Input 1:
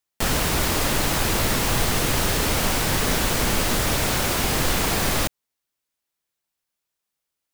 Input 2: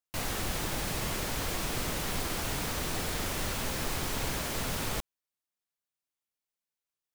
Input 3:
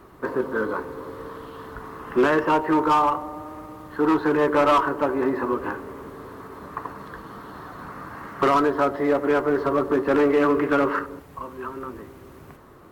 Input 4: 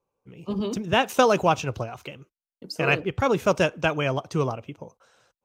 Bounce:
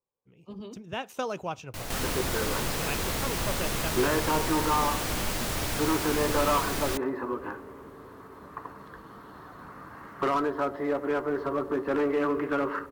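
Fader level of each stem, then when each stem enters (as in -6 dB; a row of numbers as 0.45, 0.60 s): -9.5, -4.5, -7.5, -13.5 dB; 1.70, 1.60, 1.80, 0.00 s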